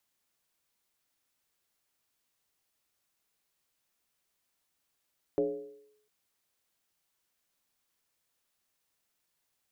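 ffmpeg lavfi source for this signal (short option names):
-f lavfi -i "aevalsrc='0.075*pow(10,-3*t/0.77)*sin(2*PI*424*t+1*clip(1-t/0.65,0,1)*sin(2*PI*0.3*424*t))':d=0.7:s=44100"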